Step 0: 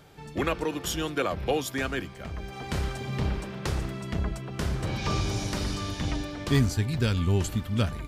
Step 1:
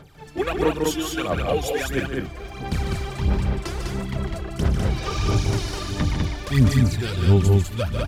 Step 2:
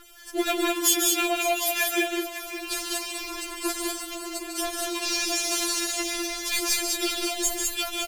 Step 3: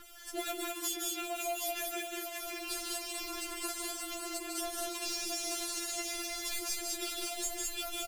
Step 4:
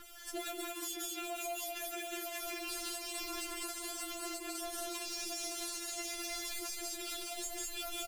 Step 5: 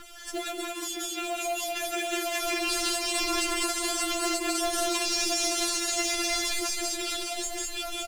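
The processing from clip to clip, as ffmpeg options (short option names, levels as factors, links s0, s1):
-filter_complex "[0:a]aphaser=in_gain=1:out_gain=1:delay=3:decay=0.72:speed=1.5:type=sinusoidal,asplit=2[s0][s1];[s1]aecho=0:1:148.7|201.2:0.447|0.708[s2];[s0][s2]amix=inputs=2:normalize=0,volume=0.794"
-af "aecho=1:1:558:0.224,crystalizer=i=4.5:c=0,afftfilt=real='re*4*eq(mod(b,16),0)':imag='im*4*eq(mod(b,16),0)':win_size=2048:overlap=0.75"
-filter_complex "[0:a]acrossover=split=560|6900[s0][s1][s2];[s0]acompressor=threshold=0.01:ratio=4[s3];[s1]acompressor=threshold=0.0126:ratio=4[s4];[s2]acompressor=threshold=0.0126:ratio=4[s5];[s3][s4][s5]amix=inputs=3:normalize=0,acrusher=bits=9:mode=log:mix=0:aa=0.000001,asplit=2[s6][s7];[s7]adelay=16,volume=0.398[s8];[s6][s8]amix=inputs=2:normalize=0,volume=0.708"
-af "alimiter=level_in=2.37:limit=0.0631:level=0:latency=1:release=120,volume=0.422"
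-af "lowpass=9000,dynaudnorm=f=560:g=7:m=2.11,acrusher=bits=5:mode=log:mix=0:aa=0.000001,volume=2.37"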